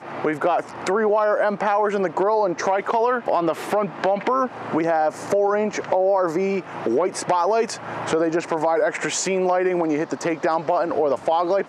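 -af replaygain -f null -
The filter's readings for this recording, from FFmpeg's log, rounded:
track_gain = +3.4 dB
track_peak = 0.341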